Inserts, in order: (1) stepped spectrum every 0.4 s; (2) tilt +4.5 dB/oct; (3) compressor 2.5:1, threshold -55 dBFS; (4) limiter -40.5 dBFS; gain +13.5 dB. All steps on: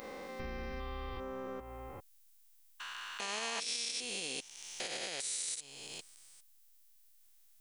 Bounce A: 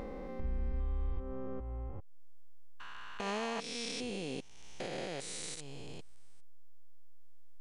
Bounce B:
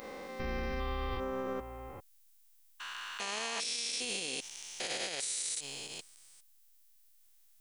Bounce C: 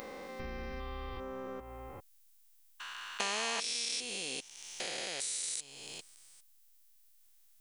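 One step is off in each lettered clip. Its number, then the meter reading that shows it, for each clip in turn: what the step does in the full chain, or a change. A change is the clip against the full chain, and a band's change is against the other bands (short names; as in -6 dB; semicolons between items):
2, 125 Hz band +10.0 dB; 3, mean gain reduction 8.0 dB; 4, crest factor change +9.5 dB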